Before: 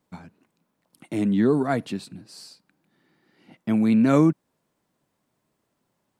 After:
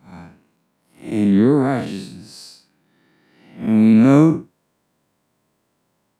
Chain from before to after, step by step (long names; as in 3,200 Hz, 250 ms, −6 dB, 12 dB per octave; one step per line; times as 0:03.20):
spectrum smeared in time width 149 ms
level +8 dB